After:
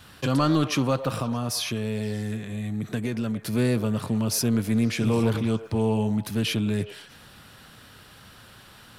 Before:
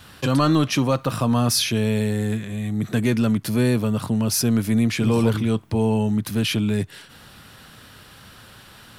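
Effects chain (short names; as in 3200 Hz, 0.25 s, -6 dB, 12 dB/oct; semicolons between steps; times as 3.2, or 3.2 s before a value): 1.15–3.53 compressor, threshold -21 dBFS, peak gain reduction 6 dB; delay with a stepping band-pass 0.104 s, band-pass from 540 Hz, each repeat 0.7 oct, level -9 dB; Doppler distortion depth 0.11 ms; gain -3.5 dB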